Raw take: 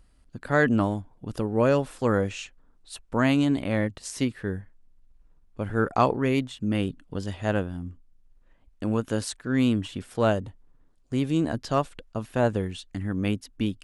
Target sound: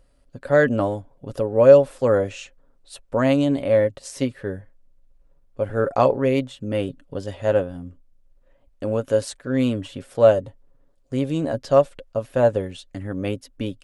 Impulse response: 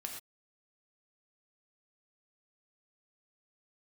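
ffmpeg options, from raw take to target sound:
-af "equalizer=frequency=550:width_type=o:width=0.44:gain=13.5,aecho=1:1:7.3:0.37,volume=-1dB"

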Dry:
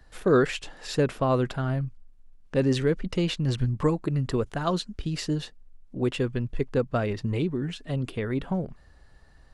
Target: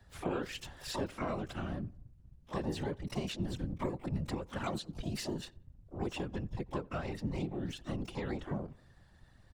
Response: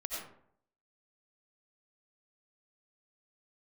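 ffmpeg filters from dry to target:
-filter_complex "[0:a]asplit=2[link_01][link_02];[link_02]asetrate=88200,aresample=44100,atempo=0.5,volume=-10dB[link_03];[link_01][link_03]amix=inputs=2:normalize=0,acompressor=threshold=-27dB:ratio=6,afftfilt=real='hypot(re,im)*cos(2*PI*random(0))':imag='hypot(re,im)*sin(2*PI*random(1))':win_size=512:overlap=0.75,bandreject=frequency=450:width=13,asplit=2[link_04][link_05];[link_05]adelay=90,lowpass=frequency=1800:poles=1,volume=-23.5dB,asplit=2[link_06][link_07];[link_07]adelay=90,lowpass=frequency=1800:poles=1,volume=0.49,asplit=2[link_08][link_09];[link_09]adelay=90,lowpass=frequency=1800:poles=1,volume=0.49[link_10];[link_04][link_06][link_08][link_10]amix=inputs=4:normalize=0"

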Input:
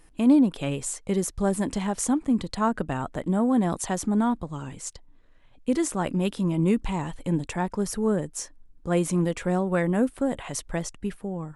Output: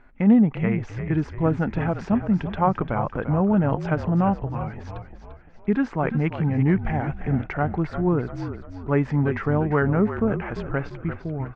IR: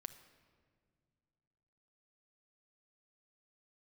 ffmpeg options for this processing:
-filter_complex "[0:a]crystalizer=i=6:c=0,lowpass=frequency=2300:width=0.5412,lowpass=frequency=2300:width=1.3066,asetrate=36028,aresample=44100,atempo=1.22405,asplit=2[link_01][link_02];[link_02]asplit=5[link_03][link_04][link_05][link_06][link_07];[link_03]adelay=345,afreqshift=-41,volume=-10dB[link_08];[link_04]adelay=690,afreqshift=-82,volume=-16.7dB[link_09];[link_05]adelay=1035,afreqshift=-123,volume=-23.5dB[link_10];[link_06]adelay=1380,afreqshift=-164,volume=-30.2dB[link_11];[link_07]adelay=1725,afreqshift=-205,volume=-37dB[link_12];[link_08][link_09][link_10][link_11][link_12]amix=inputs=5:normalize=0[link_13];[link_01][link_13]amix=inputs=2:normalize=0,volume=2dB"

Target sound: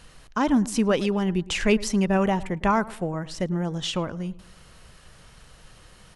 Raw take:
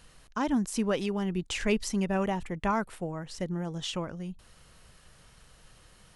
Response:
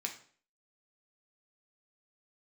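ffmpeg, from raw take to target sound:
-filter_complex "[0:a]highshelf=frequency=9200:gain=-5.5,asplit=2[link_01][link_02];[link_02]adelay=108,lowpass=frequency=1700:poles=1,volume=-18.5dB,asplit=2[link_03][link_04];[link_04]adelay=108,lowpass=frequency=1700:poles=1,volume=0.41,asplit=2[link_05][link_06];[link_06]adelay=108,lowpass=frequency=1700:poles=1,volume=0.41[link_07];[link_01][link_03][link_05][link_07]amix=inputs=4:normalize=0,volume=6.5dB"

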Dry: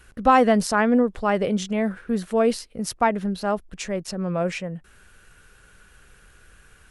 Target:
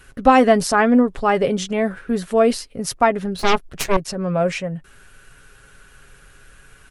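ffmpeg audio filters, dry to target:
ffmpeg -i in.wav -filter_complex "[0:a]aecho=1:1:7.3:0.41,asettb=1/sr,asplit=3[link_01][link_02][link_03];[link_01]atrim=end=3.394[link_04];[link_02]atrim=start=3.39:end=3.97,asetpts=PTS-STARTPTS,afade=type=in:duration=0.004:curve=qsin,afade=type=out:start_time=0.576:duration=0.004:curve=qsin,aeval=exprs='0.266*(cos(1*acos(clip(val(0)/0.266,-1,1)))-cos(1*PI/2))+0.119*(cos(6*acos(clip(val(0)/0.266,-1,1)))-cos(6*PI/2))':channel_layout=same[link_05];[link_03]atrim=start=3.966[link_06];[link_04][link_05]acrossfade=duration=0.004:curve1=hsin:curve2=qsin[link_07];[link_07][link_06]acrossfade=duration=0.004:curve1=qsin:curve2=hsin,volume=4dB" out.wav

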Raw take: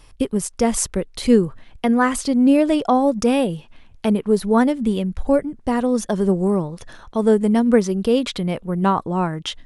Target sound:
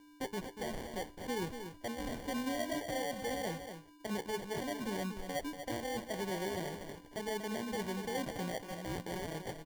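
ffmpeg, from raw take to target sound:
ffmpeg -i in.wav -filter_complex "[0:a]agate=range=-44dB:threshold=-38dB:ratio=16:detection=peak,acrossover=split=560 2400:gain=0.178 1 0.126[link_01][link_02][link_03];[link_01][link_02][link_03]amix=inputs=3:normalize=0,areverse,acompressor=threshold=-29dB:ratio=6,areverse,alimiter=level_in=4.5dB:limit=-24dB:level=0:latency=1:release=25,volume=-4.5dB,acompressor=mode=upward:threshold=-57dB:ratio=2.5,aeval=exprs='val(0)+0.00178*sin(2*PI*1000*n/s)':channel_layout=same,flanger=delay=9.9:depth=4.7:regen=-68:speed=0.57:shape=sinusoidal,acrusher=samples=34:mix=1:aa=0.000001,aecho=1:1:238:0.376,volume=2.5dB" out.wav

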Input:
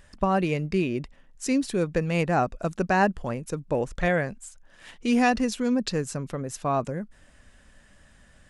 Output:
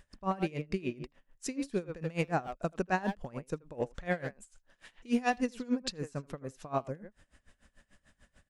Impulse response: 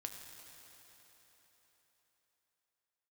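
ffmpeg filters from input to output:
-filter_complex "[0:a]asplit=2[link_01][link_02];[link_02]adelay=80,highpass=300,lowpass=3400,asoftclip=type=hard:threshold=-18.5dB,volume=-8dB[link_03];[link_01][link_03]amix=inputs=2:normalize=0,aeval=exprs='val(0)*pow(10,-22*(0.5-0.5*cos(2*PI*6.8*n/s))/20)':channel_layout=same,volume=-4dB"

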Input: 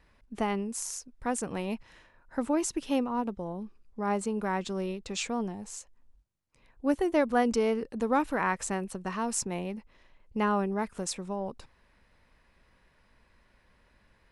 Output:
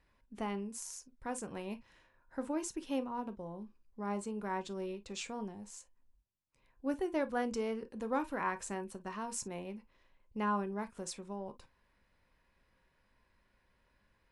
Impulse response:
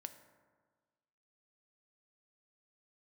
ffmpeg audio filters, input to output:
-filter_complex "[1:a]atrim=start_sample=2205,atrim=end_sample=4410,asetrate=74970,aresample=44100[link_01];[0:a][link_01]afir=irnorm=-1:irlink=0,volume=1dB"

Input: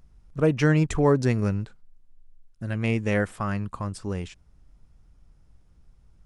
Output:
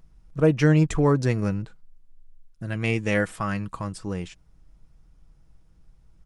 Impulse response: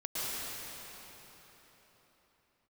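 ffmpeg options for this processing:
-filter_complex "[0:a]aecho=1:1:6.2:0.35,asettb=1/sr,asplit=3[link_01][link_02][link_03];[link_01]atrim=end=1.624[link_04];[link_02]atrim=start=1.62:end=3.93,asetpts=PTS-STARTPTS,afade=type=in:duration=0.004:curve=qsin,afade=type=out:start_time=2.306:duration=0.004:curve=qsin,adynamicequalizer=threshold=0.00891:dfrequency=1600:dqfactor=0.7:tfrequency=1600:tqfactor=0.7:attack=5:release=100:ratio=0.375:range=2:mode=boostabove:tftype=highshelf[link_05];[link_03]atrim=start=3.926[link_06];[link_04][link_05]acrossfade=duration=0.004:curve1=hsin:curve2=qsin[link_07];[link_07][link_06]acrossfade=duration=0.004:curve1=qsin:curve2=hsin"

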